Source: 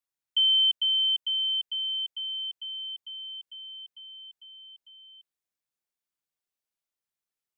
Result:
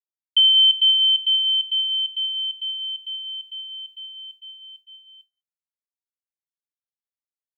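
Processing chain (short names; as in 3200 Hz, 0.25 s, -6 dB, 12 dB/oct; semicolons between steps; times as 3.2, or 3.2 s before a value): non-linear reverb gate 0.22 s rising, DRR 9.5 dB; expander -48 dBFS; gain +8 dB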